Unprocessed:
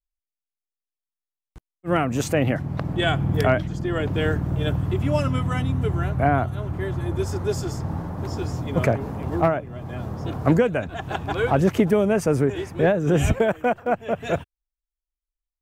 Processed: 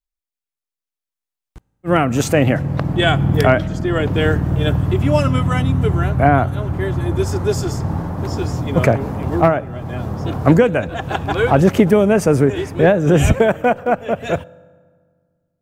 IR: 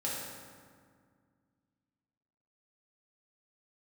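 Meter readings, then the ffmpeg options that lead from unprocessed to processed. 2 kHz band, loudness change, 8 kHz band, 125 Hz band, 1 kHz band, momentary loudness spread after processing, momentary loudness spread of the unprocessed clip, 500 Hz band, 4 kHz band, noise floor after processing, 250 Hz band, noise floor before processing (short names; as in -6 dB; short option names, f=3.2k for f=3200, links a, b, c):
+6.5 dB, +6.5 dB, +6.5 dB, +6.5 dB, +6.5 dB, 9 LU, 9 LU, +6.5 dB, +6.5 dB, under -85 dBFS, +6.5 dB, under -85 dBFS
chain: -filter_complex "[0:a]asplit=2[a][b];[1:a]atrim=start_sample=2205[c];[b][c]afir=irnorm=-1:irlink=0,volume=-24.5dB[d];[a][d]amix=inputs=2:normalize=0,dynaudnorm=f=140:g=21:m=11.5dB"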